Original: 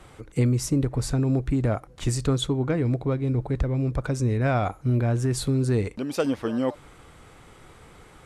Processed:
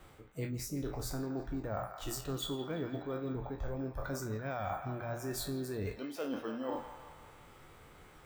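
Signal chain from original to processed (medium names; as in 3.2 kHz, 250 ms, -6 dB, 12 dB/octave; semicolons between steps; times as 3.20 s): spectral sustain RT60 0.39 s; spectral noise reduction 10 dB; hum notches 60/120/180/240 Hz; reverse; compression 12:1, threshold -36 dBFS, peak gain reduction 18.5 dB; reverse; harmony voices +5 st -17 dB; on a send: feedback echo behind a band-pass 169 ms, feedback 59%, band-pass 1.5 kHz, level -7 dB; on the sum: careless resampling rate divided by 2×, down none, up hold; trim +1 dB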